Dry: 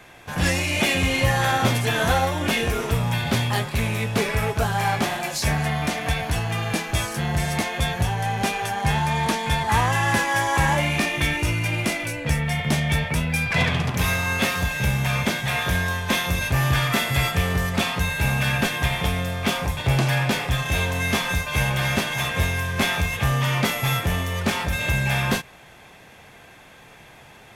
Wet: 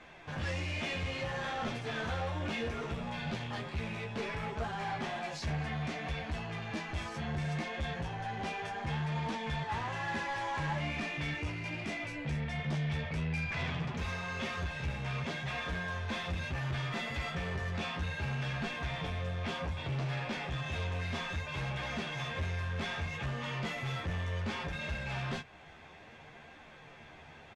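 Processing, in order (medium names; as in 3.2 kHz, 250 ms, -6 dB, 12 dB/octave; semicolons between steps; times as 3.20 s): in parallel at -1 dB: compression, threshold -33 dBFS, peak gain reduction 17 dB; on the sum: flange 0.64 Hz, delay 3.3 ms, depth 9.3 ms, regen -29%; saturation -24.5 dBFS, distortion -10 dB; distance through air 120 m; doubling 13 ms -5.5 dB; trim -8 dB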